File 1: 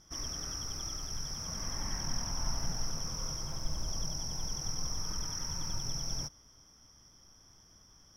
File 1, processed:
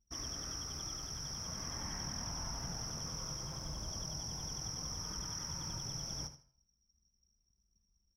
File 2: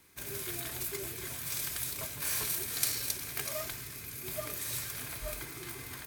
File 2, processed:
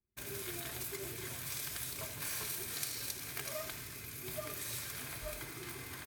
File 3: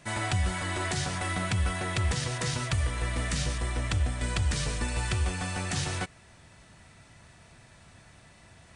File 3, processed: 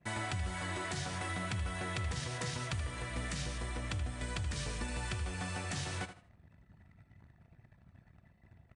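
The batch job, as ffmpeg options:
ffmpeg -i in.wav -af "highpass=50,anlmdn=0.00398,highshelf=frequency=7700:gain=-3.5,acompressor=threshold=-36dB:ratio=2.5,flanger=delay=2.6:depth=8.6:regen=-89:speed=0.23:shape=sinusoidal,aecho=1:1:78|156|234:0.251|0.0603|0.0145,volume=3dB" out.wav

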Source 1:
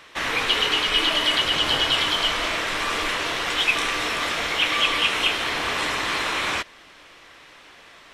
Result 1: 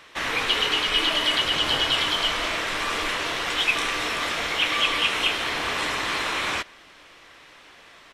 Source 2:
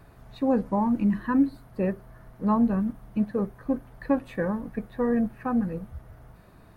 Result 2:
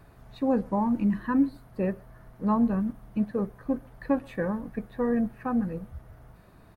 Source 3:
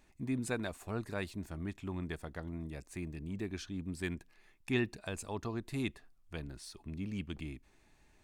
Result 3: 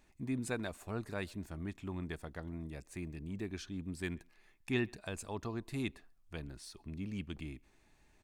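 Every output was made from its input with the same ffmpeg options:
ffmpeg -i in.wav -filter_complex "[0:a]asplit=2[link_01][link_02];[link_02]adelay=130,highpass=300,lowpass=3400,asoftclip=type=hard:threshold=-15.5dB,volume=-27dB[link_03];[link_01][link_03]amix=inputs=2:normalize=0,volume=-1.5dB" out.wav

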